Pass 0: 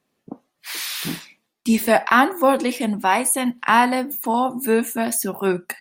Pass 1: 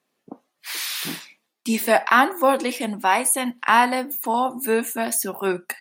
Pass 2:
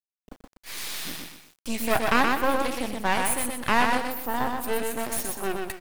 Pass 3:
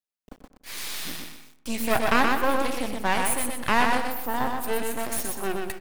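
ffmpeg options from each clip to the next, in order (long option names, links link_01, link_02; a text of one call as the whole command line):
ffmpeg -i in.wav -af "highpass=frequency=350:poles=1" out.wav
ffmpeg -i in.wav -af "aecho=1:1:123|246|369|492:0.668|0.227|0.0773|0.0263,acrusher=bits=5:dc=4:mix=0:aa=0.000001,aeval=exprs='max(val(0),0)':channel_layout=same,volume=-3dB" out.wav
ffmpeg -i in.wav -filter_complex "[0:a]asplit=2[link_01][link_02];[link_02]adelay=97,lowpass=frequency=1800:poles=1,volume=-12.5dB,asplit=2[link_03][link_04];[link_04]adelay=97,lowpass=frequency=1800:poles=1,volume=0.53,asplit=2[link_05][link_06];[link_06]adelay=97,lowpass=frequency=1800:poles=1,volume=0.53,asplit=2[link_07][link_08];[link_08]adelay=97,lowpass=frequency=1800:poles=1,volume=0.53,asplit=2[link_09][link_10];[link_10]adelay=97,lowpass=frequency=1800:poles=1,volume=0.53[link_11];[link_01][link_03][link_05][link_07][link_09][link_11]amix=inputs=6:normalize=0" out.wav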